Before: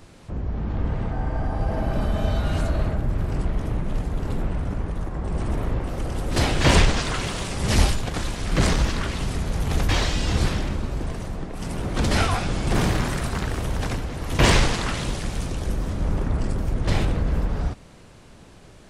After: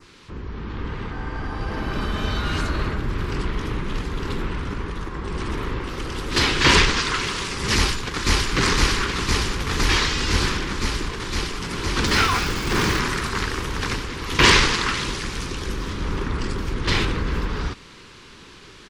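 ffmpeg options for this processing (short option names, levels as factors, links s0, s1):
-filter_complex "[0:a]asplit=2[s0][s1];[s1]afade=t=in:st=7.75:d=0.01,afade=t=out:st=8.53:d=0.01,aecho=0:1:510|1020|1530|2040|2550|3060|3570|4080|4590|5100|5610|6120:1|0.85|0.7225|0.614125|0.522006|0.443705|0.37715|0.320577|0.272491|0.231617|0.196874|0.167343[s2];[s0][s2]amix=inputs=2:normalize=0,asettb=1/sr,asplit=3[s3][s4][s5];[s3]atrim=end=12.064[s6];[s4]atrim=start=12.06:end=12.99,asetpts=PTS-STARTPTS,afade=t=in:d=0.004:c=qsin,afade=t=out:st=0.926:d=0.004:c=qsin,acrusher=bits=7:dc=4:mix=0:aa=0.000001[s7];[s5]atrim=start=12.986[s8];[s6][s7]acrossfade=d=0.004:c1=hsin:c2=qsin[s9];[s9][s8]acrossfade=d=0.004:c1=qsin:c2=hsin,adynamicequalizer=threshold=0.00562:dfrequency=3400:dqfactor=1.5:tfrequency=3400:tqfactor=1.5:attack=5:release=100:ratio=0.375:range=2.5:mode=cutabove:tftype=bell,dynaudnorm=f=430:g=9:m=1.58,firequalizer=gain_entry='entry(140,0);entry(400,8);entry(650,-7);entry(1000,10);entry(3400,14);entry(4800,13);entry(8500,3)':delay=0.05:min_phase=1,volume=0.501"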